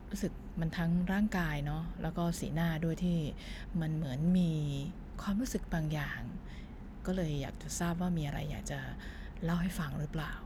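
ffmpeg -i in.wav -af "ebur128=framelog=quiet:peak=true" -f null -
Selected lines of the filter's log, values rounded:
Integrated loudness:
  I:         -35.5 LUFS
  Threshold: -45.8 LUFS
Loudness range:
  LRA:         3.6 LU
  Threshold: -55.7 LUFS
  LRA low:   -38.0 LUFS
  LRA high:  -34.4 LUFS
True peak:
  Peak:      -20.8 dBFS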